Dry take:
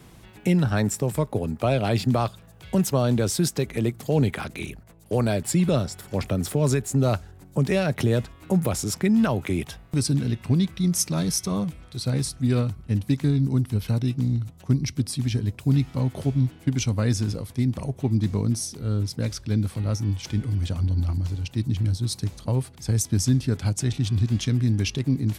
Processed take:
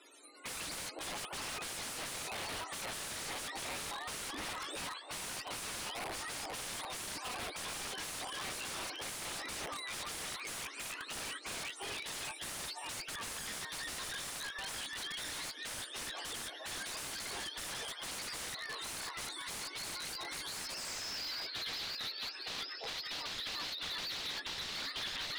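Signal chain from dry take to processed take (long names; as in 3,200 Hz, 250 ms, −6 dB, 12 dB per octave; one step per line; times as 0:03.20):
frequency axis turned over on the octave scale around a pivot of 670 Hz
Chebyshev high-pass filter 280 Hz, order 6
echo through a band-pass that steps 343 ms, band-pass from 520 Hz, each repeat 0.7 octaves, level −1 dB
wrap-around overflow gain 29.5 dB
low-pass filter sweep 9,800 Hz → 4,100 Hz, 0:20.70–0:21.33
slew-rate limiting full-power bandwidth 93 Hz
level −5 dB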